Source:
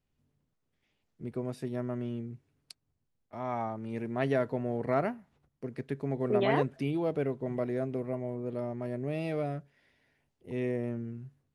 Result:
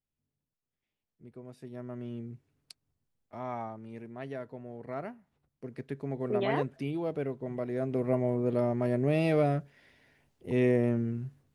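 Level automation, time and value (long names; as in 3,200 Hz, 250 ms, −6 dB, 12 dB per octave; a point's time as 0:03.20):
0:01.42 −12 dB
0:02.30 −1 dB
0:03.36 −1 dB
0:04.24 −11 dB
0:04.77 −11 dB
0:05.76 −2.5 dB
0:07.66 −2.5 dB
0:08.13 +7 dB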